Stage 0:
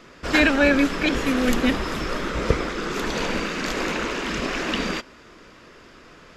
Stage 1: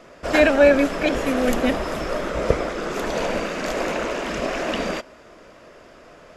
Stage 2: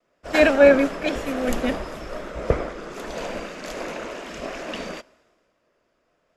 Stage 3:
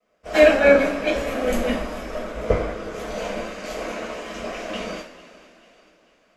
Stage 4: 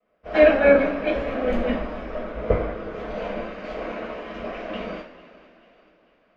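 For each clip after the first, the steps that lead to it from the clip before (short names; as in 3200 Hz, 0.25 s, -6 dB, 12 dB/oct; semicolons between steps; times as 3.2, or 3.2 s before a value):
fifteen-band EQ 630 Hz +12 dB, 4000 Hz -3 dB, 10000 Hz +4 dB; gain -2 dB
vibrato 0.99 Hz 31 cents; three-band expander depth 70%; gain -5 dB
thinning echo 0.443 s, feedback 49%, high-pass 420 Hz, level -19 dB; two-slope reverb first 0.37 s, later 3.9 s, from -22 dB, DRR -6.5 dB; gain -6 dB
air absorption 320 m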